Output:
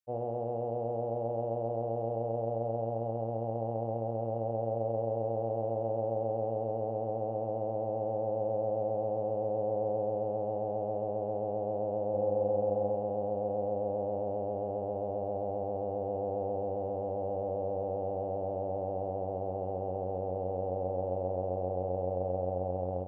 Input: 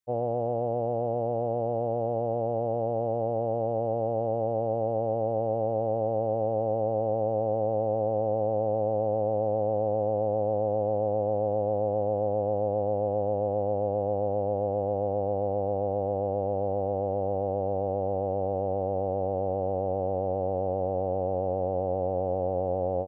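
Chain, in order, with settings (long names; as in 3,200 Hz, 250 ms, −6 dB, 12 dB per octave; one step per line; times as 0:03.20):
0:12.10–0:12.95: double-tracking delay 40 ms −4.5 dB
on a send: flutter between parallel walls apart 7.5 metres, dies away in 0.36 s
on the sum: level −6.5 dB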